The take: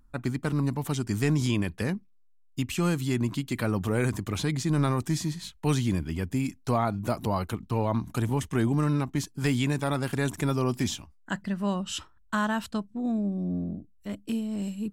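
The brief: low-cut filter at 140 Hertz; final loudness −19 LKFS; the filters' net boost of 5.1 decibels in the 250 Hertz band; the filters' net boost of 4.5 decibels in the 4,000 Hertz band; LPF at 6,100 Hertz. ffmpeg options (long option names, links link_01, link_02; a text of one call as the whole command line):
ffmpeg -i in.wav -af "highpass=140,lowpass=6100,equalizer=frequency=250:width_type=o:gain=7,equalizer=frequency=4000:width_type=o:gain=6.5,volume=7dB" out.wav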